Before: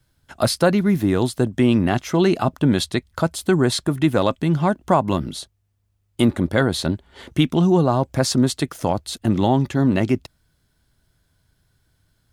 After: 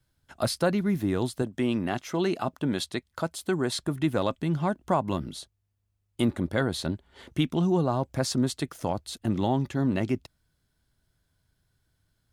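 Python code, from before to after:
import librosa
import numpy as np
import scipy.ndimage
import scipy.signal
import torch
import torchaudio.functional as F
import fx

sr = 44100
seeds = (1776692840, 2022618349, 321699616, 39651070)

y = fx.low_shelf(x, sr, hz=120.0, db=-11.0, at=(1.42, 3.77))
y = y * librosa.db_to_amplitude(-8.0)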